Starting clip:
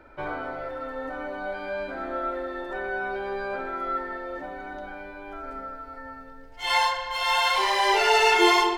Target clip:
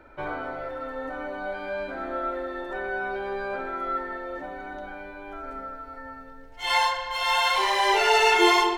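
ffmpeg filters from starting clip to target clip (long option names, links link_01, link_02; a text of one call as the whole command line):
ffmpeg -i in.wav -af "bandreject=frequency=4900:width=14" out.wav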